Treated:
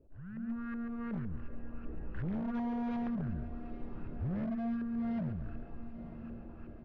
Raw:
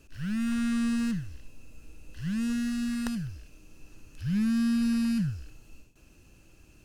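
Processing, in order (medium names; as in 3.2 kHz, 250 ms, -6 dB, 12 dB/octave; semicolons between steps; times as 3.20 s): LFO low-pass saw up 2.7 Hz 510–1700 Hz; compression 20:1, threshold -38 dBFS, peak gain reduction 16 dB; delay 139 ms -7 dB; level rider gain up to 13 dB; dynamic bell 390 Hz, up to +7 dB, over -52 dBFS, Q 2.9; wavefolder -23.5 dBFS; steep low-pass 5.7 kHz 72 dB/octave; treble shelf 3 kHz -10.5 dB; echo that smears into a reverb 916 ms, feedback 53%, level -13 dB; 0.89–3.08 s: loudspeaker Doppler distortion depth 0.31 ms; trim -7.5 dB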